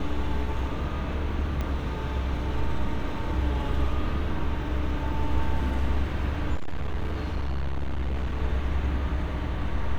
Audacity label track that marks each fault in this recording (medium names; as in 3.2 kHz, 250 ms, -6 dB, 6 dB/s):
1.610000	1.610000	pop -18 dBFS
6.540000	8.390000	clipped -24 dBFS